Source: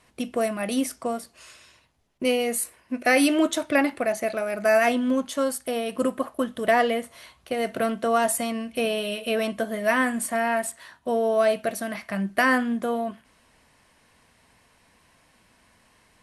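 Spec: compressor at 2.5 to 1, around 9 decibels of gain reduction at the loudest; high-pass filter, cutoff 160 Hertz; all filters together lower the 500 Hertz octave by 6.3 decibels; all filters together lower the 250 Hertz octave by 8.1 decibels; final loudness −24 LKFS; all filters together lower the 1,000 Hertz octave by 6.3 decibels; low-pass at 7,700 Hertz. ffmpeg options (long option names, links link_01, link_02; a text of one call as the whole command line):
ffmpeg -i in.wav -af "highpass=160,lowpass=7700,equalizer=frequency=250:width_type=o:gain=-7,equalizer=frequency=500:width_type=o:gain=-4,equalizer=frequency=1000:width_type=o:gain=-7,acompressor=threshold=-34dB:ratio=2.5,volume=12dB" out.wav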